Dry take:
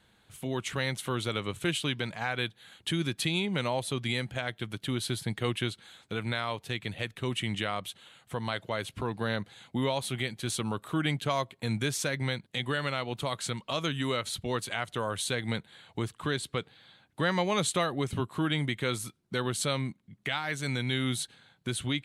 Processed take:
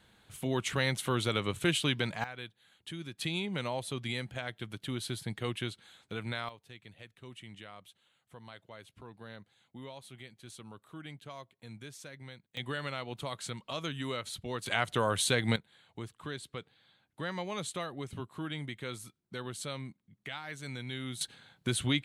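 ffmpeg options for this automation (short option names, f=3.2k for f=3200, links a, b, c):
-af "asetnsamples=n=441:p=0,asendcmd='2.24 volume volume -12dB;3.21 volume volume -5dB;6.49 volume volume -17dB;12.57 volume volume -6dB;14.66 volume volume 3dB;15.56 volume volume -9.5dB;21.21 volume volume 1.5dB',volume=1dB"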